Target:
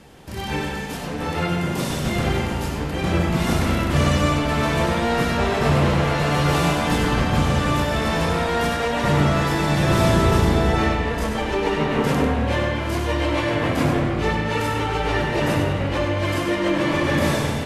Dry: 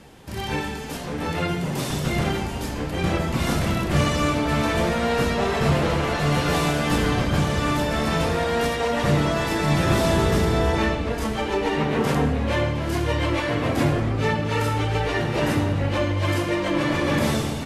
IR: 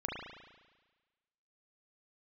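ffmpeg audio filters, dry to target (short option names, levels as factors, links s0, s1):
-filter_complex "[0:a]asplit=2[s0][s1];[1:a]atrim=start_sample=2205,adelay=97[s2];[s1][s2]afir=irnorm=-1:irlink=0,volume=0.531[s3];[s0][s3]amix=inputs=2:normalize=0"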